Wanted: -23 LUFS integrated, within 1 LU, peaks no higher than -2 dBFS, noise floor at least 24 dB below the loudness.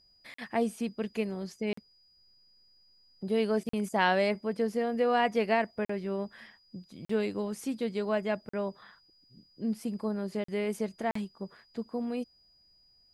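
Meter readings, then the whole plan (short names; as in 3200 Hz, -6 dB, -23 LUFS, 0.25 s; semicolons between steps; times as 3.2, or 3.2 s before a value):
dropouts 8; longest dropout 44 ms; steady tone 4900 Hz; tone level -62 dBFS; loudness -32.0 LUFS; peak -11.5 dBFS; loudness target -23.0 LUFS
-> interpolate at 0.34/1.73/3.69/5.85/7.05/8.49/10.44/11.11, 44 ms; notch 4900 Hz, Q 30; gain +9 dB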